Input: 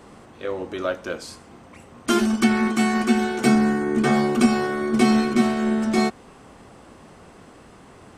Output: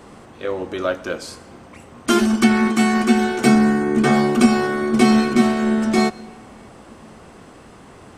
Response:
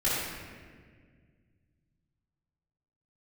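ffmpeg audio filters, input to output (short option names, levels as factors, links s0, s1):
-filter_complex "[0:a]asplit=2[s0][s1];[1:a]atrim=start_sample=2205,adelay=102[s2];[s1][s2]afir=irnorm=-1:irlink=0,volume=0.0266[s3];[s0][s3]amix=inputs=2:normalize=0,volume=1.5"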